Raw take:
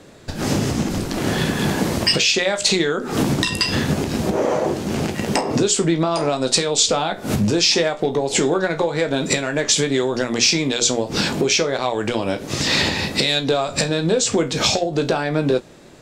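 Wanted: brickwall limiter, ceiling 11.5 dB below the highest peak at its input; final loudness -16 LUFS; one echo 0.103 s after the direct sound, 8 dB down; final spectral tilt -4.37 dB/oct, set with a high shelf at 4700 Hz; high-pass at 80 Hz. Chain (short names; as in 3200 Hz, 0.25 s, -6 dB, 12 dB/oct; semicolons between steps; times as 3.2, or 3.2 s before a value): HPF 80 Hz; high shelf 4700 Hz -7 dB; limiter -18.5 dBFS; echo 0.103 s -8 dB; gain +10.5 dB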